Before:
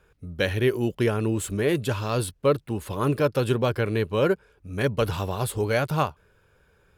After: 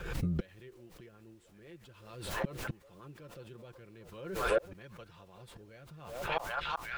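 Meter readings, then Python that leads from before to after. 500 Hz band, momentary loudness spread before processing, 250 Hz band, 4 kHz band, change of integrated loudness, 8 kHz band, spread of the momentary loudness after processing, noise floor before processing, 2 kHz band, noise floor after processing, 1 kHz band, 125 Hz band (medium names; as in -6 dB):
-15.5 dB, 5 LU, -16.0 dB, -11.0 dB, -11.0 dB, -14.5 dB, 21 LU, -63 dBFS, -9.5 dB, -59 dBFS, -9.5 dB, -16.0 dB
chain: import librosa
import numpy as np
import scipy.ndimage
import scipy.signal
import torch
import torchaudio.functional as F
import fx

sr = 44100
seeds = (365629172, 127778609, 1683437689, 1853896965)

p1 = fx.low_shelf(x, sr, hz=180.0, db=5.5)
p2 = p1 + fx.echo_stepped(p1, sr, ms=378, hz=690.0, octaves=0.7, feedback_pct=70, wet_db=-9.5, dry=0)
p3 = fx.rotary_switch(p2, sr, hz=7.5, then_hz=0.65, switch_at_s=3.51)
p4 = scipy.signal.sosfilt(scipy.signal.butter(2, 5200.0, 'lowpass', fs=sr, output='sos'), p3)
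p5 = fx.low_shelf(p4, sr, hz=480.0, db=-5.5)
p6 = fx.gate_flip(p5, sr, shuts_db=-30.0, range_db=-38)
p7 = fx.rider(p6, sr, range_db=10, speed_s=2.0)
p8 = p6 + F.gain(torch.from_numpy(p7), 1.0).numpy()
p9 = p8 + 0.5 * np.pad(p8, (int(5.8 * sr / 1000.0), 0))[:len(p8)]
p10 = fx.dmg_noise_colour(p9, sr, seeds[0], colour='pink', level_db=-78.0)
p11 = fx.pre_swell(p10, sr, db_per_s=57.0)
y = F.gain(torch.from_numpy(p11), 4.5).numpy()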